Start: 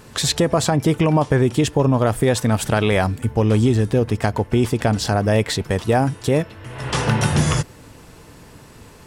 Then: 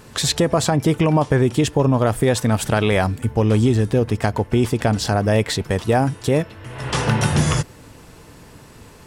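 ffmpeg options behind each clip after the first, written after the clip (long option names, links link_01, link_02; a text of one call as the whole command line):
ffmpeg -i in.wav -af anull out.wav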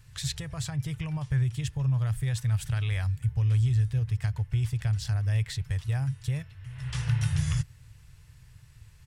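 ffmpeg -i in.wav -af "firequalizer=gain_entry='entry(130,0);entry(210,-29);entry(1800,-10)':delay=0.05:min_phase=1,volume=-4dB" out.wav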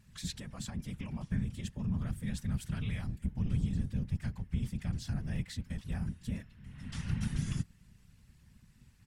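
ffmpeg -i in.wav -af "afftfilt=real='hypot(re,im)*cos(2*PI*random(0))':imag='hypot(re,im)*sin(2*PI*random(1))':win_size=512:overlap=0.75,volume=-2dB" out.wav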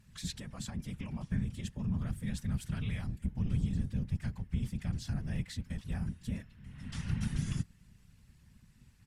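ffmpeg -i in.wav -ar 32000 -c:a libvorbis -b:a 128k out.ogg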